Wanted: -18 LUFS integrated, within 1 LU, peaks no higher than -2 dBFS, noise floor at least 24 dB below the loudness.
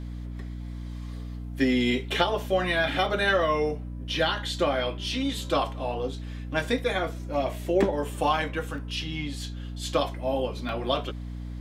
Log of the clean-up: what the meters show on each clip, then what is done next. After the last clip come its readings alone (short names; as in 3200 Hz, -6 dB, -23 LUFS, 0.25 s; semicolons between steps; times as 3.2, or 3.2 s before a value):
dropouts 4; longest dropout 1.2 ms; hum 60 Hz; harmonics up to 300 Hz; hum level -33 dBFS; loudness -27.5 LUFS; peak -9.0 dBFS; loudness target -18.0 LUFS
-> interpolate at 2.39/3.06/8.78/10.69, 1.2 ms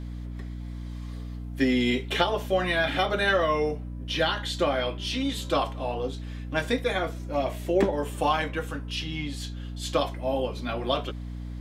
dropouts 0; hum 60 Hz; harmonics up to 300 Hz; hum level -33 dBFS
-> de-hum 60 Hz, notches 5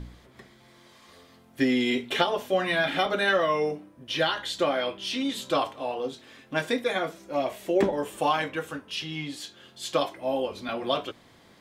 hum none; loudness -27.5 LUFS; peak -9.0 dBFS; loudness target -18.0 LUFS
-> gain +9.5 dB; limiter -2 dBFS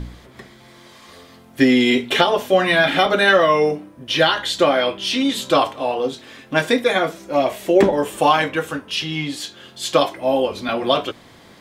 loudness -18.0 LUFS; peak -2.0 dBFS; noise floor -46 dBFS